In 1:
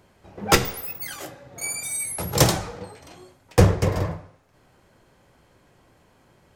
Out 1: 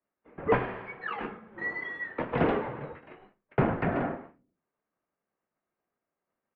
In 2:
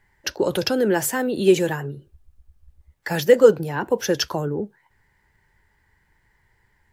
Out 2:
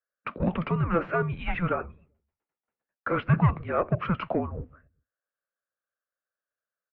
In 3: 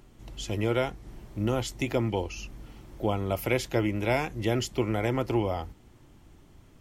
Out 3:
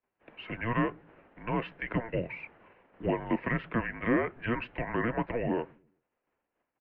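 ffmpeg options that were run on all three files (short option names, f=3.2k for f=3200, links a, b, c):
-filter_complex "[0:a]agate=range=-33dB:threshold=-40dB:ratio=3:detection=peak,asplit=2[a][b];[b]highpass=f=720:p=1,volume=18dB,asoftclip=type=tanh:threshold=-1dB[c];[a][c]amix=inputs=2:normalize=0,lowpass=f=2k:p=1,volume=-6dB,acrossover=split=580|1100[d][e][f];[d]aecho=1:1:129|258|387:0.133|0.0493|0.0183[g];[f]alimiter=limit=-16.5dB:level=0:latency=1:release=348[h];[g][e][h]amix=inputs=3:normalize=0,highpass=f=560:t=q:w=0.5412,highpass=f=560:t=q:w=1.307,lowpass=f=2.9k:t=q:w=0.5176,lowpass=f=2.9k:t=q:w=0.7071,lowpass=f=2.9k:t=q:w=1.932,afreqshift=-350,volume=-5dB"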